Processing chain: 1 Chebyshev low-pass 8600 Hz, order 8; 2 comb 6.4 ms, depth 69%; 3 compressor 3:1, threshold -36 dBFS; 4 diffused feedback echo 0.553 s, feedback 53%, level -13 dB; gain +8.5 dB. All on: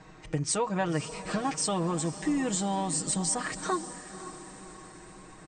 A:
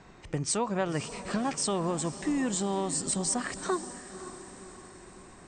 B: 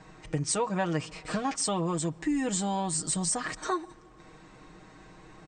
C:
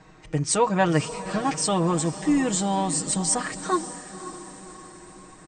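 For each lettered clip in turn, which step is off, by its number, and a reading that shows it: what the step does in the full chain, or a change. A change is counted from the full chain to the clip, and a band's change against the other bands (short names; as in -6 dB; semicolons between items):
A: 2, 500 Hz band +1.5 dB; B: 4, echo-to-direct -11.5 dB to none; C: 3, crest factor change +2.0 dB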